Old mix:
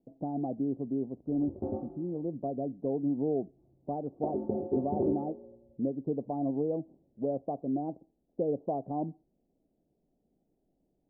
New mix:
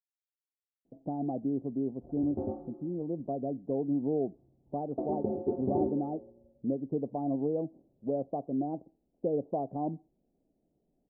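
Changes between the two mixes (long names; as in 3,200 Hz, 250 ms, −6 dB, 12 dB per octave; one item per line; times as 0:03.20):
speech: entry +0.85 s
background: entry +0.75 s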